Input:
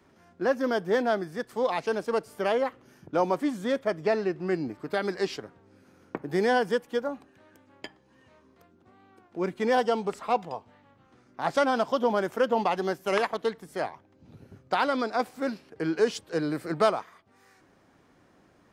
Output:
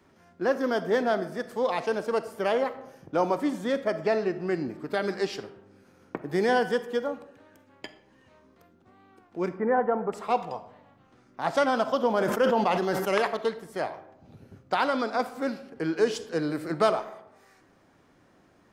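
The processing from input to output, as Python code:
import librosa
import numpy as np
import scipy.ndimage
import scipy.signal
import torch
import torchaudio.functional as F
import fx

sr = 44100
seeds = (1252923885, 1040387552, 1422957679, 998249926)

y = fx.steep_lowpass(x, sr, hz=1800.0, slope=36, at=(9.48, 10.12), fade=0.02)
y = fx.rev_freeverb(y, sr, rt60_s=0.88, hf_ratio=0.5, predelay_ms=5, drr_db=11.5)
y = fx.sustainer(y, sr, db_per_s=34.0, at=(12.2, 13.26), fade=0.02)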